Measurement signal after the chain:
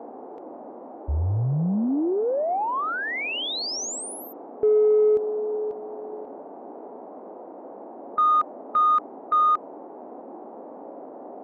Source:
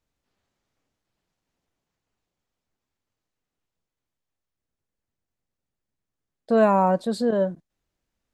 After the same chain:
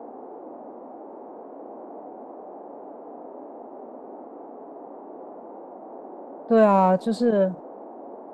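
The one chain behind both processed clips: level-controlled noise filter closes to 1.9 kHz, open at -19.5 dBFS; band noise 240–830 Hz -41 dBFS; harmonic-percussive split harmonic +6 dB; in parallel at -8.5 dB: saturation -14 dBFS; on the sum: trim -6 dB

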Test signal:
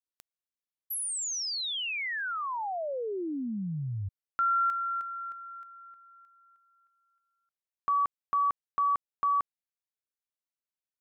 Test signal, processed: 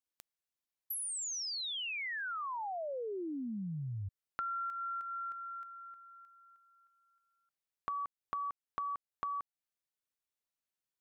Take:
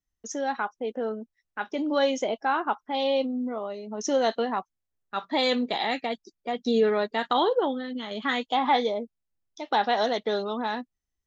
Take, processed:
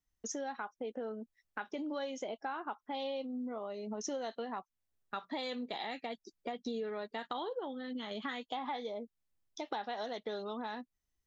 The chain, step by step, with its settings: compression 5:1, threshold -38 dBFS

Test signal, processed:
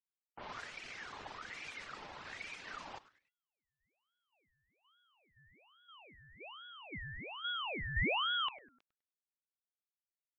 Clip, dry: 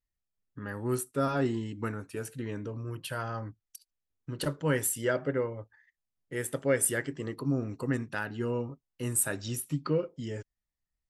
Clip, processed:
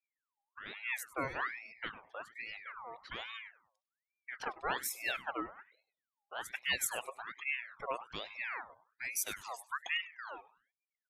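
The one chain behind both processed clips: level-controlled noise filter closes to 740 Hz, open at -28 dBFS; reverb removal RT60 1 s; spectral gate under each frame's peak -30 dB strong; frequency-shifting echo 100 ms, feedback 34%, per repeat -130 Hz, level -17 dB; ring modulator with a swept carrier 1.6 kHz, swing 50%, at 1.2 Hz; trim -5 dB

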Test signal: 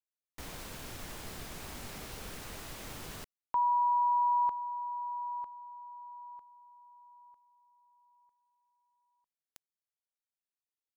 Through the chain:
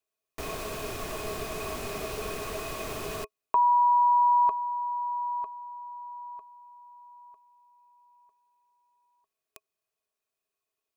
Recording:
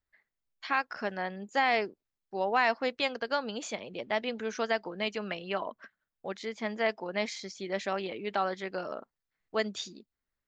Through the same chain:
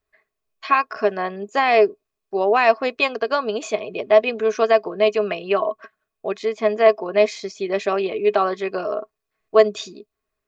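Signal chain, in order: small resonant body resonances 420/640/1100/2500 Hz, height 15 dB, ringing for 60 ms; trim +5.5 dB

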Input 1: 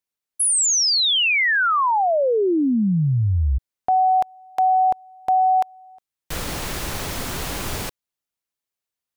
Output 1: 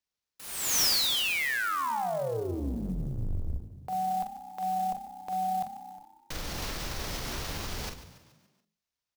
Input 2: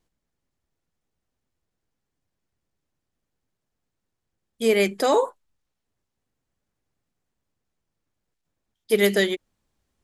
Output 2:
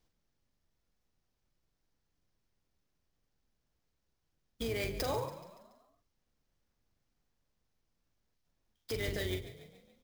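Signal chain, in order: octave divider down 2 oct, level +3 dB; hum notches 50/100/150/200/250/300/350/400 Hz; compression 6:1, threshold -28 dBFS; peak limiter -24 dBFS; resonant low-pass 5.8 kHz, resonance Q 2.1; doubling 43 ms -7 dB; frequency-shifting echo 142 ms, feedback 51%, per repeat +32 Hz, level -14 dB; sampling jitter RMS 0.022 ms; trim -3 dB

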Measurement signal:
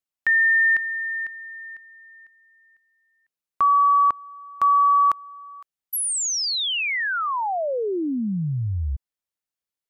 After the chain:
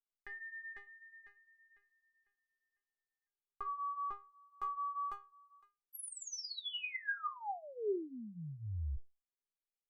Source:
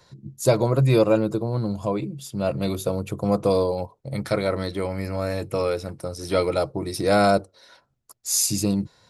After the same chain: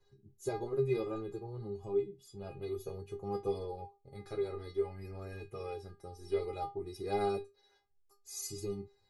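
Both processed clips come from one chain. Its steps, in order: flange 0.54 Hz, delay 8.9 ms, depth 4.4 ms, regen -28%; tilt EQ -2.5 dB/octave; inharmonic resonator 400 Hz, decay 0.25 s, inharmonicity 0.002; trim +4.5 dB

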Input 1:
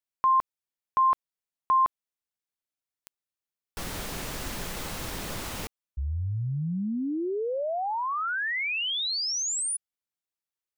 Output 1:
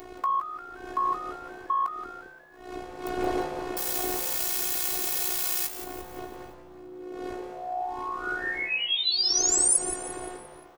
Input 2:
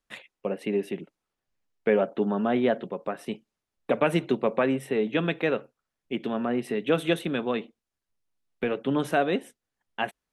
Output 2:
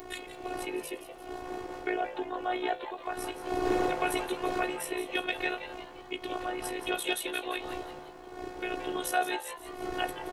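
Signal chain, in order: wind noise 320 Hz -25 dBFS; ring modulator 30 Hz; in parallel at -1 dB: compression, threshold -34 dBFS; on the sum: robot voice 364 Hz; saturation -7.5 dBFS; RIAA curve recording; doubling 18 ms -12 dB; on a send: frequency-shifting echo 174 ms, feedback 46%, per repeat +150 Hz, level -11.5 dB; on the sum: trim -1.5 dB

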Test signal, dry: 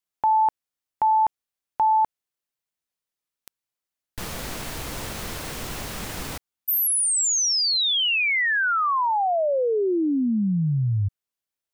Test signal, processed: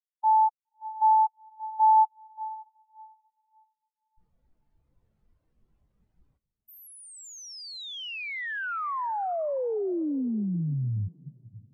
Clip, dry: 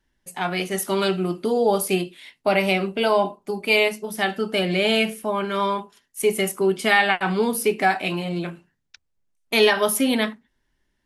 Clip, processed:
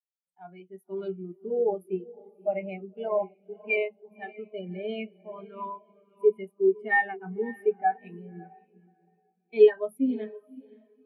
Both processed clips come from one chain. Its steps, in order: echo that smears into a reverb 561 ms, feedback 52%, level -7.5 dB; spectral contrast expander 2.5:1; trim -2.5 dB

